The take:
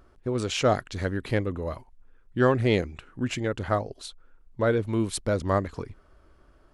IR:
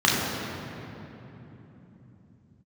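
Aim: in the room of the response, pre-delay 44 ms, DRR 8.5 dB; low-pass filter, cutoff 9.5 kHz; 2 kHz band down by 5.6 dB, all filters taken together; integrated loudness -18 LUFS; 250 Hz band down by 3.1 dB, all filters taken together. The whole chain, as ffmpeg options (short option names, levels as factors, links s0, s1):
-filter_complex "[0:a]lowpass=9500,equalizer=f=250:t=o:g=-4,equalizer=f=2000:t=o:g=-7.5,asplit=2[s0][s1];[1:a]atrim=start_sample=2205,adelay=44[s2];[s1][s2]afir=irnorm=-1:irlink=0,volume=0.0398[s3];[s0][s3]amix=inputs=2:normalize=0,volume=3.35"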